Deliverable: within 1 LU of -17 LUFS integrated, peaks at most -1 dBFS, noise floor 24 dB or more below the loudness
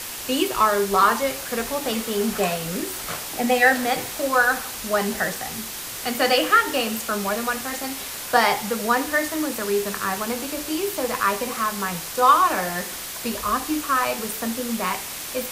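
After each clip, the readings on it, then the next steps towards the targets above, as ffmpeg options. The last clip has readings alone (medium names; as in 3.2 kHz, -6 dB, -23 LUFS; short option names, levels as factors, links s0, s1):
noise floor -33 dBFS; noise floor target -47 dBFS; loudness -22.5 LUFS; peak level -3.0 dBFS; loudness target -17.0 LUFS
-> -af "afftdn=nr=14:nf=-33"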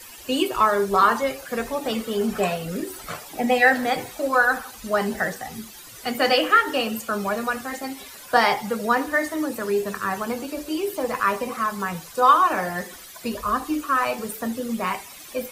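noise floor -42 dBFS; noise floor target -47 dBFS
-> -af "afftdn=nr=6:nf=-42"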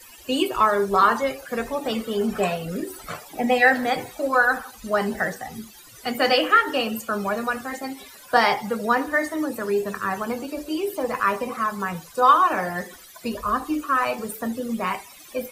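noise floor -46 dBFS; noise floor target -47 dBFS
-> -af "afftdn=nr=6:nf=-46"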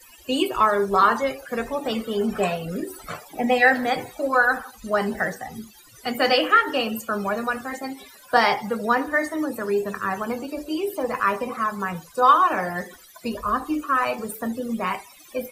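noise floor -49 dBFS; loudness -23.0 LUFS; peak level -3.5 dBFS; loudness target -17.0 LUFS
-> -af "volume=2,alimiter=limit=0.891:level=0:latency=1"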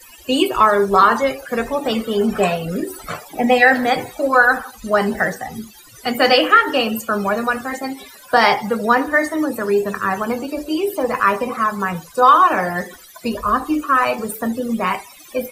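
loudness -17.5 LUFS; peak level -1.0 dBFS; noise floor -43 dBFS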